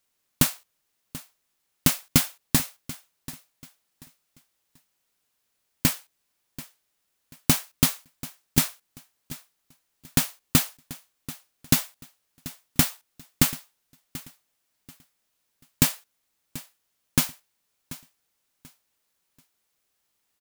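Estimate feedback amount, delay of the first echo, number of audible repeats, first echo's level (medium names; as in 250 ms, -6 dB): 28%, 736 ms, 2, -17.5 dB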